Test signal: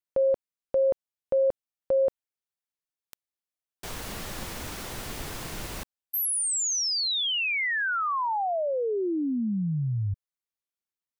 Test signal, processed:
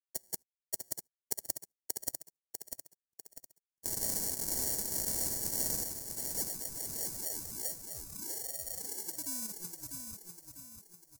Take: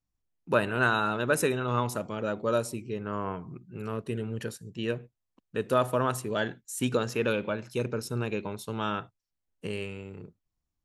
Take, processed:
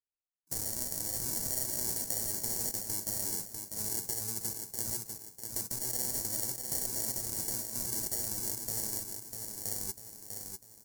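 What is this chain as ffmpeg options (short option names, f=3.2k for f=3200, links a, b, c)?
-af "afftfilt=real='re*pow(10,15/40*sin(2*PI*(0.77*log(max(b,1)*sr/1024/100)/log(2)-(-2)*(pts-256)/sr)))':imag='im*pow(10,15/40*sin(2*PI*(0.77*log(max(b,1)*sr/1024/100)/log(2)-(-2)*(pts-256)/sr)))':win_size=1024:overlap=0.75,agate=range=-36dB:threshold=-32dB:ratio=16:release=128:detection=rms,aemphasis=mode=production:type=cd,afftfilt=real='re*lt(hypot(re,im),0.178)':imag='im*lt(hypot(re,im),0.178)':win_size=1024:overlap=0.75,equalizer=f=1.6k:t=o:w=0.39:g=-14,alimiter=level_in=2dB:limit=-24dB:level=0:latency=1:release=31,volume=-2dB,acompressor=threshold=-55dB:ratio=2:attack=39:release=59:knee=1:detection=rms,acrusher=samples=35:mix=1:aa=0.000001,aexciter=amount=11.4:drive=8.7:freq=5k,aecho=1:1:647|1294|1941|2588|3235:0.501|0.216|0.0927|0.0398|0.0171"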